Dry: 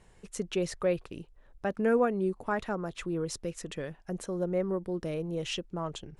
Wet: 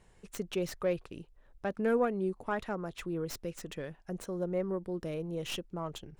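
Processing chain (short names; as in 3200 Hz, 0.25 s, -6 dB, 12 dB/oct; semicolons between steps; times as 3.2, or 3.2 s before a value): tracing distortion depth 0.11 ms; gain -3 dB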